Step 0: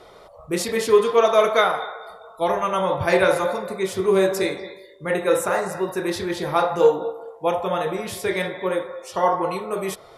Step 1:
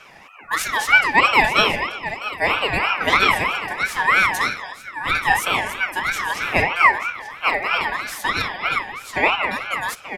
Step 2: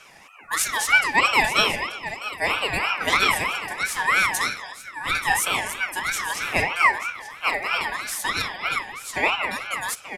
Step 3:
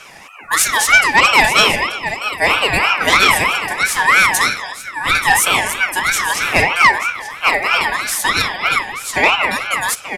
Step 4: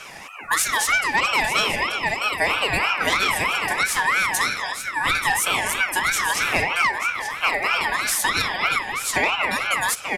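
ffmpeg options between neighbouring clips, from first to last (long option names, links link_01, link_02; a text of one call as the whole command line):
ffmpeg -i in.wav -af "aecho=1:1:884:0.224,aeval=exprs='val(0)*sin(2*PI*1600*n/s+1600*0.2/3.1*sin(2*PI*3.1*n/s))':channel_layout=same,volume=4dB" out.wav
ffmpeg -i in.wav -af "equalizer=frequency=9100:width=0.61:gain=11.5,volume=-5dB" out.wav
ffmpeg -i in.wav -af "aeval=exprs='0.562*sin(PI/2*1.58*val(0)/0.562)':channel_layout=same,volume=2dB" out.wav
ffmpeg -i in.wav -af "acompressor=threshold=-18dB:ratio=6" out.wav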